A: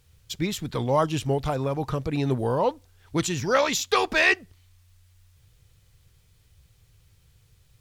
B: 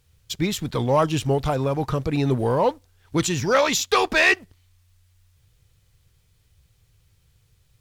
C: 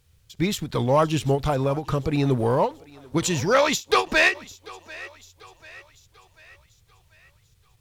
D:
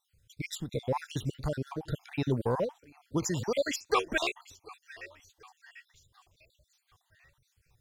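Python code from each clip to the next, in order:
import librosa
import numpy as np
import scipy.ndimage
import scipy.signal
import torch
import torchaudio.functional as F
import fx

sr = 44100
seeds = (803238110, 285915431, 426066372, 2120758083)

y1 = fx.leveller(x, sr, passes=1)
y2 = fx.echo_thinned(y1, sr, ms=741, feedback_pct=50, hz=390.0, wet_db=-20.5)
y2 = fx.end_taper(y2, sr, db_per_s=270.0)
y3 = fx.spec_dropout(y2, sr, seeds[0], share_pct=51)
y3 = y3 * librosa.db_to_amplitude(-6.5)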